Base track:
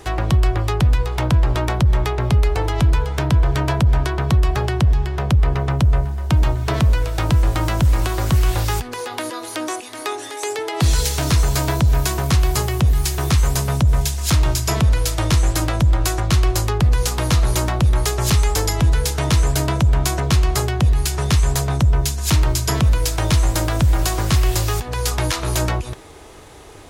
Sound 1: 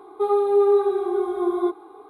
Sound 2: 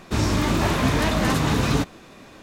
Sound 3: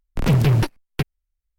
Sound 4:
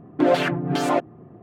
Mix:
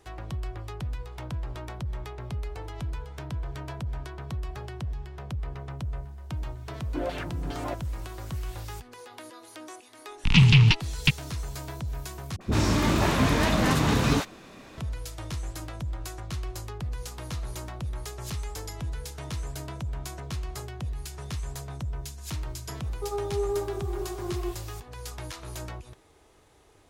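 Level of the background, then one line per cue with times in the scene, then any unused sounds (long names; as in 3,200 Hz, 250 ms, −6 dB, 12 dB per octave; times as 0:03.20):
base track −18 dB
0:06.75: mix in 4 −13.5 dB
0:10.08: mix in 3 + drawn EQ curve 190 Hz 0 dB, 600 Hz −24 dB, 900 Hz −3 dB, 1,600 Hz −5 dB, 2,700 Hz +14 dB, 6,800 Hz 0 dB, 13,000 Hz −26 dB
0:12.36: overwrite with 2 −2 dB + all-pass dispersion highs, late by 50 ms, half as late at 540 Hz
0:22.82: mix in 1 −12 dB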